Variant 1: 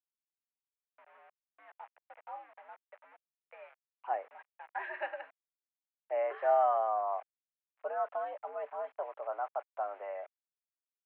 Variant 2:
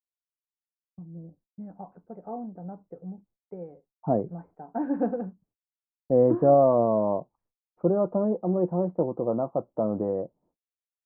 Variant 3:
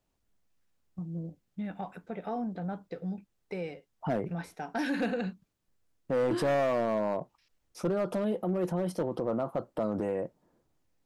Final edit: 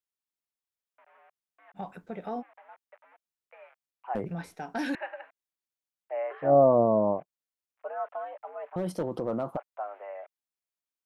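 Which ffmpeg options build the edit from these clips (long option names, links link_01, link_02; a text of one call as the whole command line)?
ffmpeg -i take0.wav -i take1.wav -i take2.wav -filter_complex "[2:a]asplit=3[link_01][link_02][link_03];[0:a]asplit=5[link_04][link_05][link_06][link_07][link_08];[link_04]atrim=end=1.78[link_09];[link_01]atrim=start=1.74:end=2.43[link_10];[link_05]atrim=start=2.39:end=4.152[link_11];[link_02]atrim=start=4.148:end=4.952[link_12];[link_06]atrim=start=4.948:end=6.57[link_13];[1:a]atrim=start=6.41:end=7.26[link_14];[link_07]atrim=start=7.1:end=8.762[link_15];[link_03]atrim=start=8.758:end=9.572[link_16];[link_08]atrim=start=9.568[link_17];[link_09][link_10]acrossfade=duration=0.04:curve1=tri:curve2=tri[link_18];[link_18][link_11]acrossfade=duration=0.04:curve1=tri:curve2=tri[link_19];[link_19][link_12]acrossfade=duration=0.004:curve1=hsin:curve2=hsin[link_20];[link_20][link_13]acrossfade=duration=0.004:curve1=hsin:curve2=hsin[link_21];[link_21][link_14]acrossfade=duration=0.16:curve1=tri:curve2=tri[link_22];[link_22][link_15]acrossfade=duration=0.16:curve1=tri:curve2=tri[link_23];[link_23][link_16]acrossfade=duration=0.004:curve1=hsin:curve2=hsin[link_24];[link_24][link_17]acrossfade=duration=0.004:curve1=hsin:curve2=hsin" out.wav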